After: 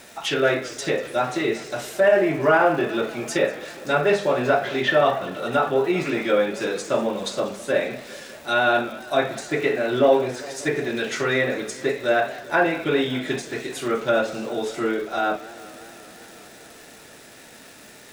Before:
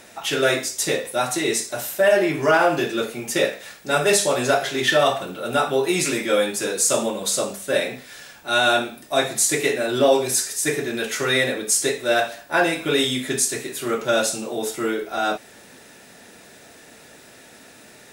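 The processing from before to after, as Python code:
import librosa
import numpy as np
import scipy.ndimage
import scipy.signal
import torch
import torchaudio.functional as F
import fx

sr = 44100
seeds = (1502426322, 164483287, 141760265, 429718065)

y = fx.env_lowpass_down(x, sr, base_hz=2200.0, full_db=-18.0)
y = fx.dmg_crackle(y, sr, seeds[0], per_s=580.0, level_db=-38.0)
y = fx.echo_warbled(y, sr, ms=196, feedback_pct=77, rate_hz=2.8, cents=153, wet_db=-19.0)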